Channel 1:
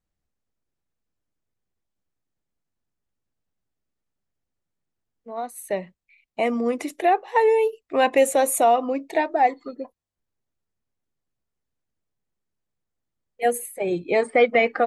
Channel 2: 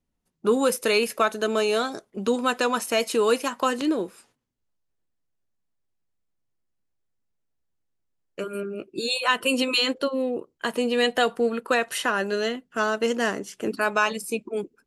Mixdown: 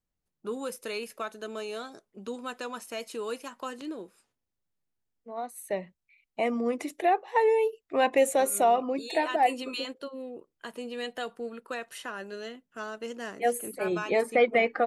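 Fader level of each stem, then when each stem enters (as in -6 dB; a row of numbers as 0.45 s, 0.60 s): -5.0 dB, -13.5 dB; 0.00 s, 0.00 s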